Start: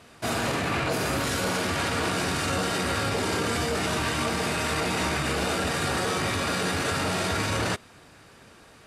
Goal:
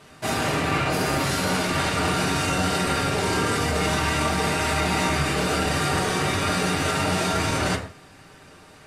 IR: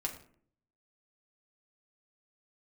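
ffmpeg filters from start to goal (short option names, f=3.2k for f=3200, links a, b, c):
-filter_complex "[0:a]asoftclip=type=hard:threshold=-18dB[a];[1:a]atrim=start_sample=2205,afade=t=out:st=0.23:d=0.01,atrim=end_sample=10584[b];[a][b]afir=irnorm=-1:irlink=0,volume=2dB"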